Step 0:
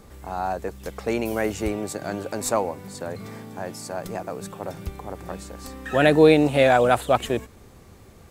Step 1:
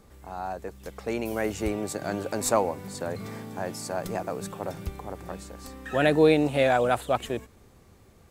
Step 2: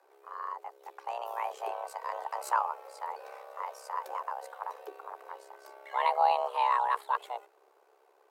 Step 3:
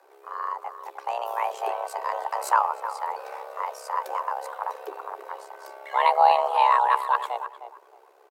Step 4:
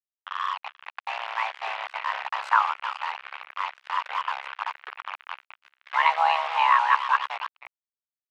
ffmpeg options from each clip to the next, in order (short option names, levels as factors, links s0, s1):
-af "dynaudnorm=f=350:g=9:m=3.76,volume=0.447"
-af "afreqshift=350,equalizer=f=250:t=o:w=1:g=-6,equalizer=f=1000:t=o:w=1:g=8,equalizer=f=8000:t=o:w=1:g=-5,tremolo=f=68:d=0.667,volume=0.376"
-filter_complex "[0:a]asplit=2[s0][s1];[s1]adelay=309,lowpass=f=1800:p=1,volume=0.299,asplit=2[s2][s3];[s3]adelay=309,lowpass=f=1800:p=1,volume=0.22,asplit=2[s4][s5];[s5]adelay=309,lowpass=f=1800:p=1,volume=0.22[s6];[s0][s2][s4][s6]amix=inputs=4:normalize=0,volume=2.37"
-af "acrusher=bits=4:mix=0:aa=0.5,asuperpass=centerf=1900:order=4:qfactor=1,volume=2"